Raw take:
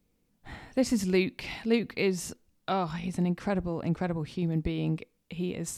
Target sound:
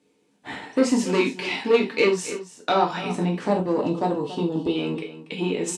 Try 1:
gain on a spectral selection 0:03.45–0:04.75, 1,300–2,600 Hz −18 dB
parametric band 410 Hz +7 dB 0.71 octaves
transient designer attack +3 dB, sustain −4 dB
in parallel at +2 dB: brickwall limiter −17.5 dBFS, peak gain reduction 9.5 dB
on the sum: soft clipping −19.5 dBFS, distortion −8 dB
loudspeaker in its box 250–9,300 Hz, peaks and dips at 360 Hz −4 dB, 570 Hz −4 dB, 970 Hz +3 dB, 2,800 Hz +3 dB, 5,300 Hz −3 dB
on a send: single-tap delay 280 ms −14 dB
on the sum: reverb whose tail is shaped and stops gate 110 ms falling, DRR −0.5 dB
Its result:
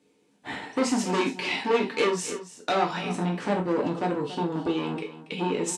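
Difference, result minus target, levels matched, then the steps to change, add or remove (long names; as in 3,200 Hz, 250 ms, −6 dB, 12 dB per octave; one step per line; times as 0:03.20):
soft clipping: distortion +9 dB
change: soft clipping −11 dBFS, distortion −16 dB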